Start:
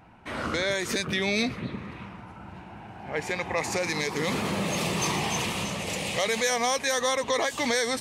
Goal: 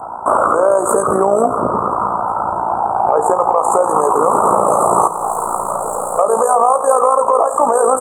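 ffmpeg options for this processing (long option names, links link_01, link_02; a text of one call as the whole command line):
ffmpeg -i in.wav -filter_complex "[0:a]asplit=3[link_01][link_02][link_03];[link_01]afade=type=out:start_time=5.07:duration=0.02[link_04];[link_02]aeval=exprs='(tanh(126*val(0)+0.35)-tanh(0.35))/126':channel_layout=same,afade=type=in:start_time=5.07:duration=0.02,afade=type=out:start_time=6.18:duration=0.02[link_05];[link_03]afade=type=in:start_time=6.18:duration=0.02[link_06];[link_04][link_05][link_06]amix=inputs=3:normalize=0,asuperstop=centerf=3300:order=20:qfactor=0.51,acrossover=split=520 7800:gain=0.0631 1 0.0891[link_07][link_08][link_09];[link_07][link_08][link_09]amix=inputs=3:normalize=0,asplit=2[link_10][link_11];[link_11]adelay=31,volume=-13dB[link_12];[link_10][link_12]amix=inputs=2:normalize=0,aecho=1:1:85|170|255|340:0.15|0.0748|0.0374|0.0187,tremolo=f=57:d=0.621,acompressor=threshold=-44dB:ratio=4,bandreject=frequency=166:width_type=h:width=4,bandreject=frequency=332:width_type=h:width=4,bandreject=frequency=498:width_type=h:width=4,alimiter=level_in=35.5dB:limit=-1dB:release=50:level=0:latency=1,volume=-1dB" -ar 48000 -c:a aac -b:a 128k out.aac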